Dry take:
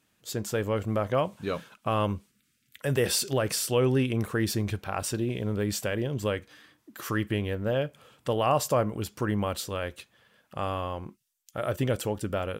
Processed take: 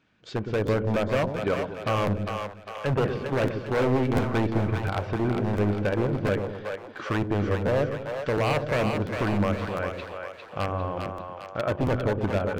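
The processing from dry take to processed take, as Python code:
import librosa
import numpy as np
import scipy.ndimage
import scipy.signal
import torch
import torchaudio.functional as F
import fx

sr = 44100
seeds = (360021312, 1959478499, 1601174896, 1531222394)

p1 = fx.block_float(x, sr, bits=5)
p2 = fx.env_lowpass_down(p1, sr, base_hz=1400.0, full_db=-26.0)
p3 = fx.level_steps(p2, sr, step_db=15)
p4 = p2 + (p3 * librosa.db_to_amplitude(0.5))
p5 = scipy.ndimage.gaussian_filter1d(p4, 2.0, mode='constant')
p6 = fx.small_body(p5, sr, hz=(1500.0, 2300.0), ring_ms=45, db=9)
p7 = 10.0 ** (-18.5 / 20.0) * (np.abs((p6 / 10.0 ** (-18.5 / 20.0) + 3.0) % 4.0 - 2.0) - 1.0)
p8 = p7 + fx.echo_split(p7, sr, split_hz=500.0, low_ms=116, high_ms=402, feedback_pct=52, wet_db=-5.0, dry=0)
y = fx.buffer_crackle(p8, sr, first_s=0.66, period_s=0.7, block=512, kind='repeat')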